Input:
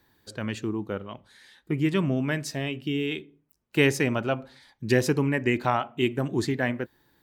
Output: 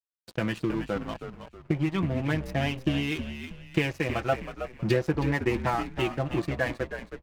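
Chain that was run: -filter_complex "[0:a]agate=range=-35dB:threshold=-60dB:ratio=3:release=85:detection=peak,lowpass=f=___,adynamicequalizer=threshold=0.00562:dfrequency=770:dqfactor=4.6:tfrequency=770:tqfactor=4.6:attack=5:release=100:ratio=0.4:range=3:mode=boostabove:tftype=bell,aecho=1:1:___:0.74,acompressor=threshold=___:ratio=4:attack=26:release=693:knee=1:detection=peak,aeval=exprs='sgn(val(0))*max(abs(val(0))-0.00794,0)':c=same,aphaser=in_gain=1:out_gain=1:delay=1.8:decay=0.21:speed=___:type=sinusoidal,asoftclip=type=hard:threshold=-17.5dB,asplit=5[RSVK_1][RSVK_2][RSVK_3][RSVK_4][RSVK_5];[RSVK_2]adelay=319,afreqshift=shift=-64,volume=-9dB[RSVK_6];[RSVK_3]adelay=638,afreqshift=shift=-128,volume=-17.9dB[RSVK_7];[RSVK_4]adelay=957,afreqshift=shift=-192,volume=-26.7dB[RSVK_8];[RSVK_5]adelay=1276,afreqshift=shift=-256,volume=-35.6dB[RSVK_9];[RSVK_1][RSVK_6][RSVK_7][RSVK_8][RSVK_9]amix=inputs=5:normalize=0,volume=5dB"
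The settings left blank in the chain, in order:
3800, 6, -29dB, 0.38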